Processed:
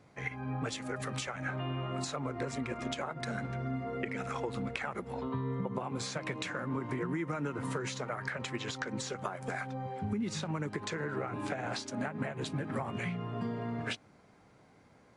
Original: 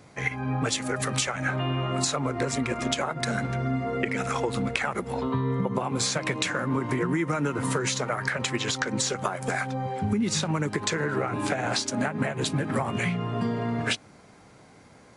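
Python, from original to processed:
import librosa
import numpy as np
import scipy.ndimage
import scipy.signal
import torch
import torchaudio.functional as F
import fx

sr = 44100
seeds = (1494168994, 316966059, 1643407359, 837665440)

y = fx.high_shelf(x, sr, hz=5000.0, db=-9.0)
y = y * librosa.db_to_amplitude(-8.5)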